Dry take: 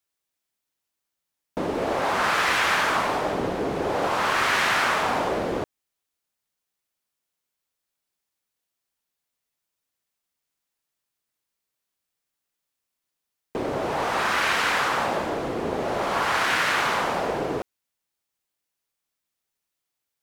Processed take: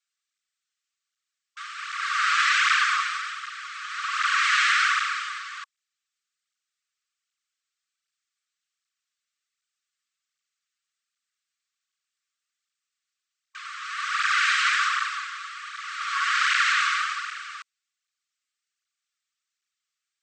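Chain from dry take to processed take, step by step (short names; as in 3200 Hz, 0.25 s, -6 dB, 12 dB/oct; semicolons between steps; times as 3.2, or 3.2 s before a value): brick-wall FIR band-pass 1100–8500 Hz; tape flanging out of phase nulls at 1.3 Hz, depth 6.1 ms; gain +5 dB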